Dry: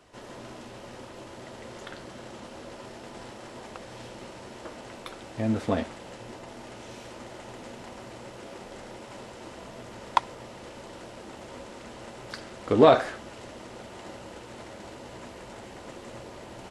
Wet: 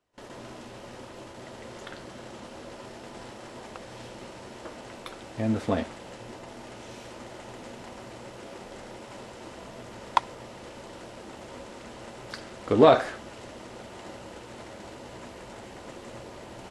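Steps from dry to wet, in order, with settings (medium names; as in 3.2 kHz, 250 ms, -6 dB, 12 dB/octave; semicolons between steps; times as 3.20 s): gate with hold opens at -35 dBFS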